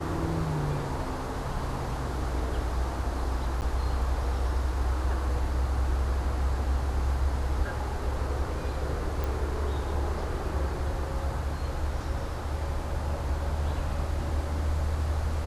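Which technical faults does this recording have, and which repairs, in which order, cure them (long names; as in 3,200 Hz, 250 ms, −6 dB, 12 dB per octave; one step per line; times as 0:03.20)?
0:03.61–0:03.62: drop-out 9.8 ms
0:09.24: click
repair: click removal
repair the gap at 0:03.61, 9.8 ms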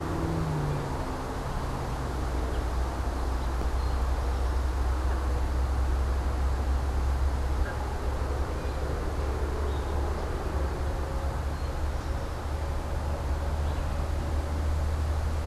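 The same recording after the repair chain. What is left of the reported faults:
none of them is left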